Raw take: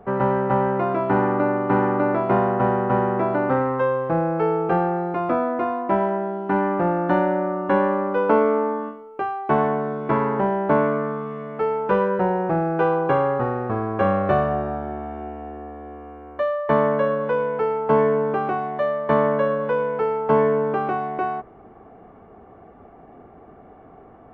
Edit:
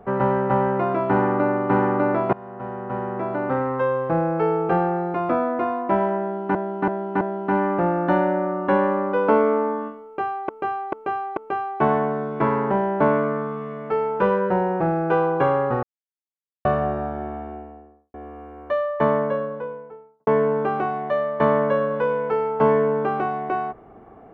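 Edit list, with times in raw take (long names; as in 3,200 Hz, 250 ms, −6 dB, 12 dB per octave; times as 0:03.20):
0:02.33–0:04.02: fade in, from −24 dB
0:06.22–0:06.55: repeat, 4 plays
0:09.06–0:09.50: repeat, 4 plays
0:13.52–0:14.34: silence
0:14.95–0:15.83: fade out and dull
0:16.49–0:17.96: fade out and dull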